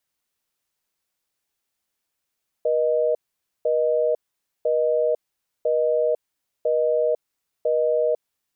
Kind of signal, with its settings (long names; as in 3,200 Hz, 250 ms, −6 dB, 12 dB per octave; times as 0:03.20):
call progress tone busy tone, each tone −20.5 dBFS 5.69 s